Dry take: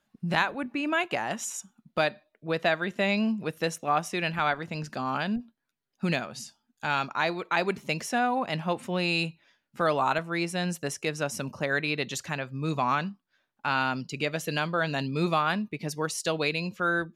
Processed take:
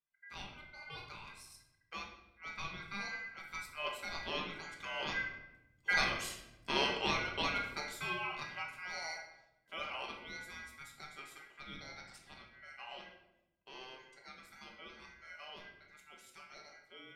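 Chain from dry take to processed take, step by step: Doppler pass-by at 6.24, 9 m/s, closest 5.1 m; HPF 160 Hz; ring modulator 1800 Hz; shoebox room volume 330 m³, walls mixed, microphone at 1.2 m; gain -1.5 dB

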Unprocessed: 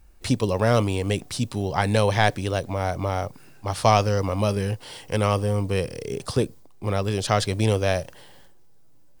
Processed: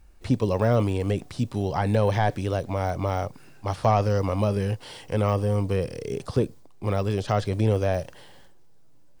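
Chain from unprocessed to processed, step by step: de-esser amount 95%; high shelf 10000 Hz -7 dB

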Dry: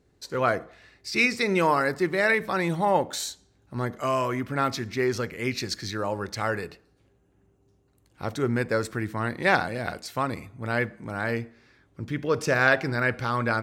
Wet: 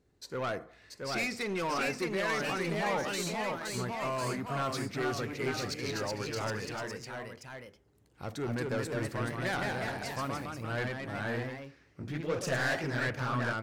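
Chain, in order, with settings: soft clip -23 dBFS, distortion -9 dB; echoes that change speed 0.696 s, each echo +1 st, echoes 3; gain -6 dB

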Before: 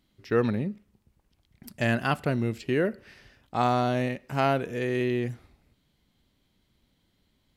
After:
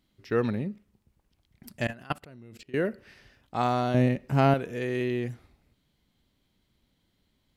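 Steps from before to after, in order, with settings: 1.87–2.74 level quantiser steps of 23 dB; 3.94–4.54 low shelf 460 Hz +10.5 dB; gain -2 dB

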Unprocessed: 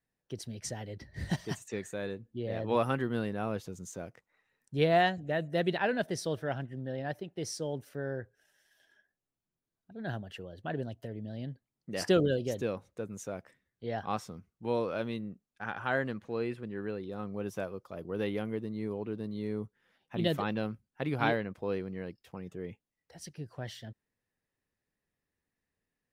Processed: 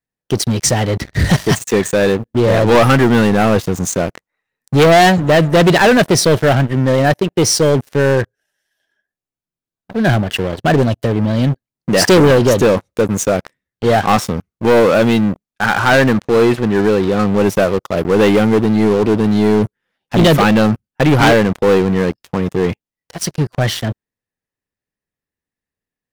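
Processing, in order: sample leveller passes 5; gain +8 dB

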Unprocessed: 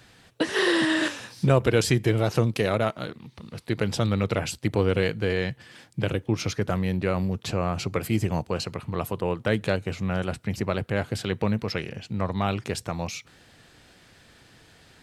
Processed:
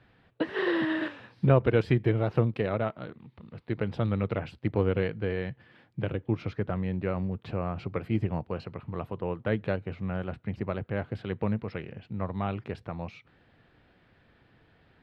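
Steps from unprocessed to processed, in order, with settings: air absorption 420 m; upward expander 1.5:1, over -27 dBFS

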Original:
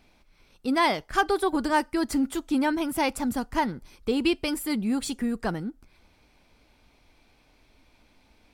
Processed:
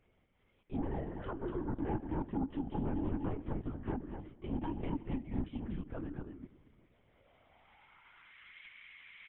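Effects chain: treble ducked by the level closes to 1100 Hz, closed at -19.5 dBFS; differentiator; comb 3.4 ms, depth 76%; dynamic EQ 1200 Hz, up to -5 dB, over -57 dBFS, Q 1.9; in parallel at -2.5 dB: compressor, threshold -57 dBFS, peak gain reduction 19.5 dB; on the sum: soft clip -29 dBFS, distortion -25 dB; band-pass sweep 310 Hz -> 2300 Hz, 6.21–7.85; sine folder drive 7 dB, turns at -38.5 dBFS; on a send: echo 0.217 s -6.5 dB; on the sum: shoebox room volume 1700 m³, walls mixed, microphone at 0.34 m; LPC vocoder at 8 kHz whisper; speed mistake 48 kHz file played as 44.1 kHz; gain +5.5 dB

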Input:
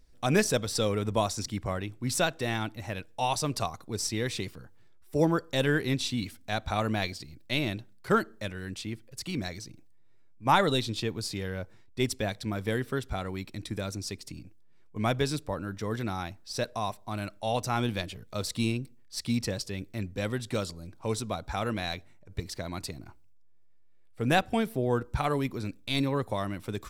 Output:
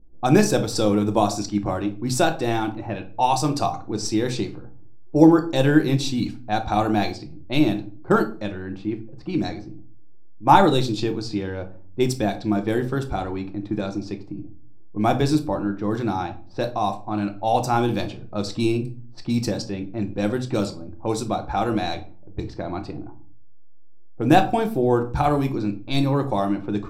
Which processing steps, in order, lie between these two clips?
low-pass opened by the level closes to 420 Hz, open at -26.5 dBFS; thirty-one-band EQ 315 Hz +12 dB, 800 Hz +8 dB, 2000 Hz -7 dB, 3150 Hz -5 dB, 10000 Hz -6 dB; shoebox room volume 290 m³, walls furnished, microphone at 0.91 m; gain +4 dB

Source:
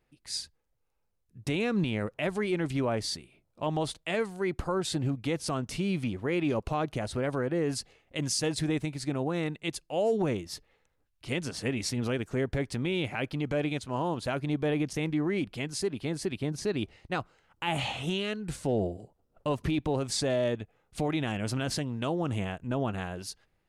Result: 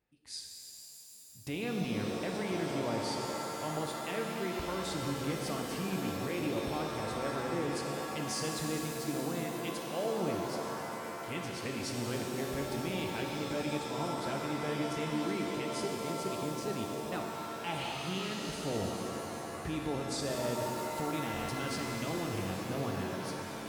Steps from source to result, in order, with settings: HPF 40 Hz; stuck buffer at 2.07/17.48/19.42/21.32, samples 1024, times 6; shimmer reverb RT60 3.6 s, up +7 st, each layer -2 dB, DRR 1 dB; gain -8.5 dB

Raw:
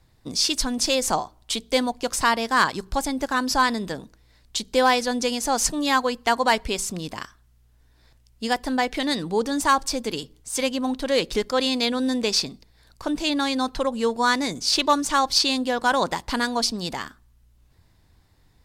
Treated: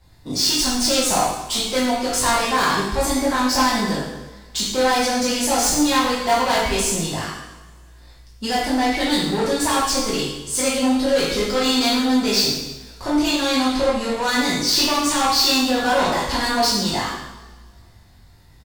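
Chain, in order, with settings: doubler 20 ms -4 dB; soft clip -22 dBFS, distortion -8 dB; two-slope reverb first 0.92 s, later 2.6 s, from -22 dB, DRR -7 dB

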